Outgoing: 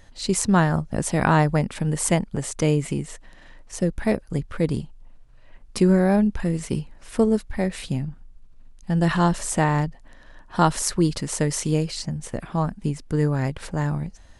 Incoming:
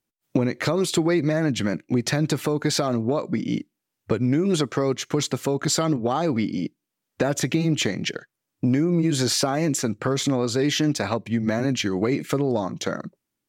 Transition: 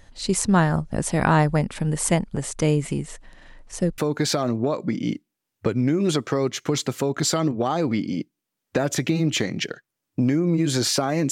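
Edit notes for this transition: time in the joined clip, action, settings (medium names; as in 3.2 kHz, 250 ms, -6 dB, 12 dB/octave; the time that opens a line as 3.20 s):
outgoing
3.98 s: go over to incoming from 2.43 s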